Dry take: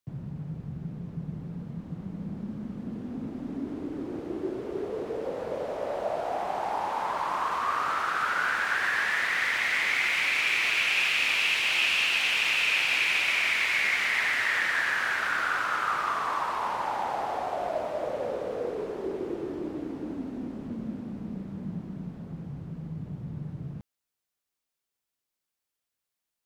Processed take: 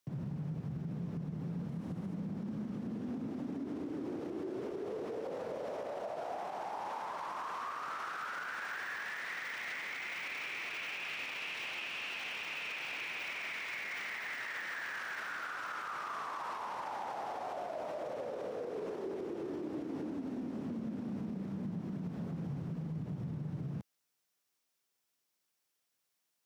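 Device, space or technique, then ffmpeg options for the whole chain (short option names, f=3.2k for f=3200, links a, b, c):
broadcast voice chain: -filter_complex "[0:a]highpass=110,deesser=1,acompressor=threshold=-36dB:ratio=6,equalizer=f=5.6k:t=o:w=0.2:g=4,alimiter=level_in=12dB:limit=-24dB:level=0:latency=1:release=57,volume=-12dB,asettb=1/sr,asplit=3[a][b][c];[a]atrim=end=1.694[d];[b]atrim=start=1.69:end=2.14,asetpts=PTS-STARTPTS,afade=t=in:d=0.004:c=qsin,afade=t=out:st=0.446:d=0.004:c=qsin,equalizer=f=10k:t=o:w=0.77:g=5.5[e];[c]atrim=start=2.136[f];[d][e]acrossfade=d=0.004:c1=hsin:c2=qsin[g];[g][f]acrossfade=d=0.004:c1=qsin:c2=hsin,volume=3.5dB"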